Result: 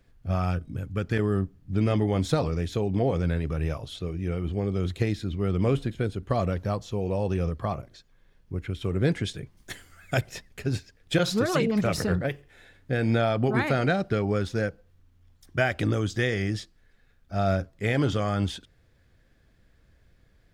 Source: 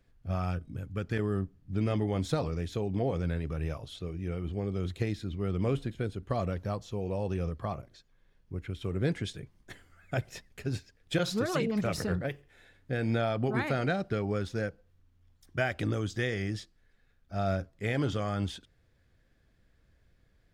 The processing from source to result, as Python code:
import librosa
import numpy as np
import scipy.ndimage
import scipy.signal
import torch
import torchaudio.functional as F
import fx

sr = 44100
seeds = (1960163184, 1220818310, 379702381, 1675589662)

y = fx.high_shelf(x, sr, hz=3000.0, db=10.5, at=(9.57, 10.21))
y = F.gain(torch.from_numpy(y), 5.5).numpy()